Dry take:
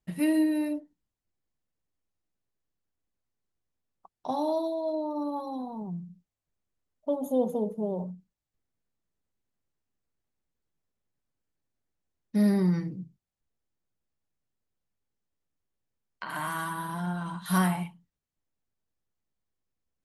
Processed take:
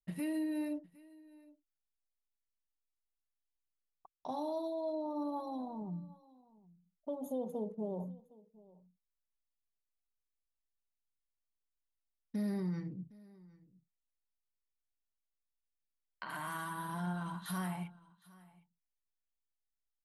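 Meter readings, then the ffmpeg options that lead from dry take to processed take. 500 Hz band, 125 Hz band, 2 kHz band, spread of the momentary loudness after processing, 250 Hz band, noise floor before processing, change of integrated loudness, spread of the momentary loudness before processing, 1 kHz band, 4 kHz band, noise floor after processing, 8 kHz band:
-9.5 dB, -10.0 dB, -9.0 dB, 15 LU, -10.0 dB, under -85 dBFS, -10.0 dB, 16 LU, -8.5 dB, -9.0 dB, under -85 dBFS, -9.5 dB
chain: -af "alimiter=level_in=0.5dB:limit=-24dB:level=0:latency=1:release=302,volume=-0.5dB,anlmdn=0.000631,aecho=1:1:761:0.075,volume=-5.5dB"

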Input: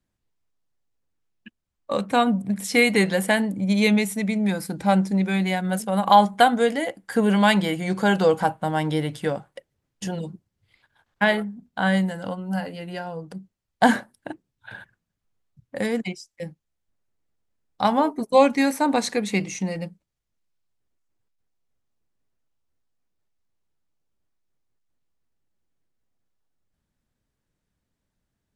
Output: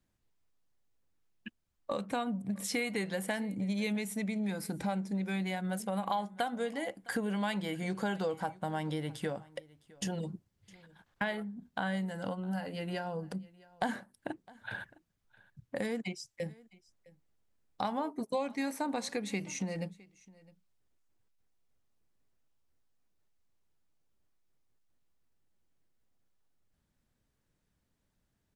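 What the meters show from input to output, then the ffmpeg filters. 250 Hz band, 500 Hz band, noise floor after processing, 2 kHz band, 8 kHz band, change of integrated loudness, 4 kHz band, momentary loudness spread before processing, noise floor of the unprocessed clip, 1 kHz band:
-12.5 dB, -14.0 dB, -79 dBFS, -13.5 dB, -9.0 dB, -14.5 dB, -13.5 dB, 16 LU, -81 dBFS, -15.5 dB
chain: -filter_complex "[0:a]acompressor=threshold=-34dB:ratio=4,asplit=2[a][b];[b]aecho=0:1:660:0.0708[c];[a][c]amix=inputs=2:normalize=0"

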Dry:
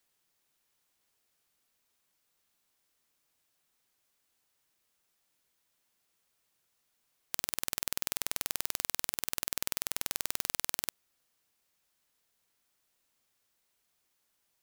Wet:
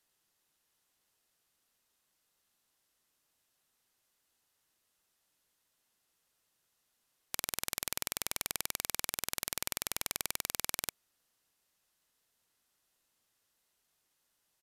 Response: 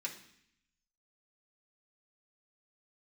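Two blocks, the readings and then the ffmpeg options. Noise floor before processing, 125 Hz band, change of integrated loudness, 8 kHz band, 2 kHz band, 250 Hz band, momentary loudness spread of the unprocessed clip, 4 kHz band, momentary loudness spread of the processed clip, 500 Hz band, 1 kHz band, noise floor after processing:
-78 dBFS, 0.0 dB, -2.0 dB, 0.0 dB, -0.5 dB, 0.0 dB, 2 LU, 0.0 dB, 2 LU, 0.0 dB, 0.0 dB, -79 dBFS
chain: -af "bandreject=f=2.3k:w=16,aresample=32000,aresample=44100"

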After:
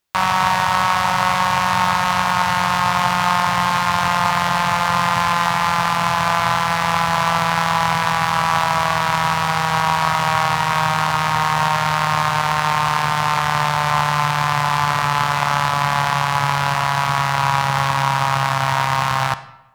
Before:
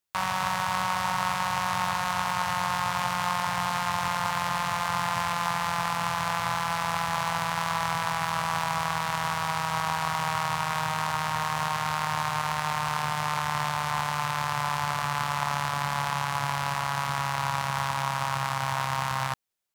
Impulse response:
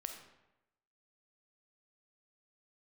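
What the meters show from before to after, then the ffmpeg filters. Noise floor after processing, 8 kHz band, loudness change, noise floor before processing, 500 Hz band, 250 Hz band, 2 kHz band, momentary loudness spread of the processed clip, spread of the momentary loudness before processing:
-20 dBFS, +7.0 dB, +10.5 dB, -30 dBFS, +10.5 dB, +10.5 dB, +10.5 dB, 1 LU, 1 LU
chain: -filter_complex "[0:a]asplit=2[a][b];[1:a]atrim=start_sample=2205,lowpass=6.8k[c];[b][c]afir=irnorm=-1:irlink=0,volume=-1.5dB[d];[a][d]amix=inputs=2:normalize=0,volume=6.5dB"

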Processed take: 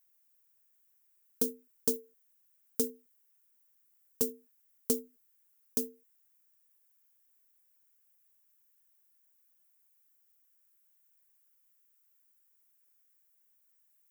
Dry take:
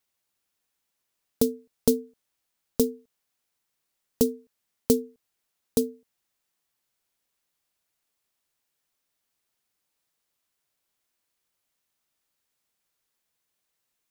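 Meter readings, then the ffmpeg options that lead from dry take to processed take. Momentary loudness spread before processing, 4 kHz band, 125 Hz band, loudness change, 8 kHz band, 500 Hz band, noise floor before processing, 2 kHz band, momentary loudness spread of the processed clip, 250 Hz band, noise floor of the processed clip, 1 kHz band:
9 LU, -7.0 dB, -15.5 dB, -6.5 dB, -2.5 dB, -11.0 dB, -80 dBFS, n/a, 7 LU, -12.5 dB, -71 dBFS, -10.5 dB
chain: -filter_complex "[0:a]aemphasis=mode=production:type=bsi,acrossover=split=8900[a][b];[b]acompressor=threshold=-17dB:ratio=4:attack=1:release=60[c];[a][c]amix=inputs=2:normalize=0,flanger=delay=1.9:depth=3.7:regen=-49:speed=0.49:shape=triangular,equalizer=f=100:t=o:w=0.67:g=4,equalizer=f=630:t=o:w=0.67:g=-7,equalizer=f=1.6k:t=o:w=0.67:g=5,equalizer=f=4k:t=o:w=0.67:g=-7,volume=-4dB"

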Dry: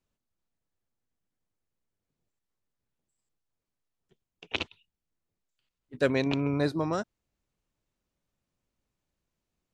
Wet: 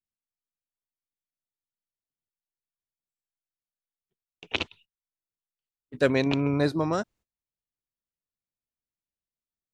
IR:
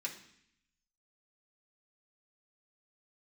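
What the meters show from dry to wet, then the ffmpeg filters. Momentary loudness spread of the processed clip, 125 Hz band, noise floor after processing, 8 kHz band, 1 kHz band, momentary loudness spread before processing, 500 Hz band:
10 LU, +3.0 dB, under -85 dBFS, n/a, +3.0 dB, 10 LU, +3.0 dB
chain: -af "agate=range=-22dB:threshold=-58dB:ratio=16:detection=peak,volume=3dB"

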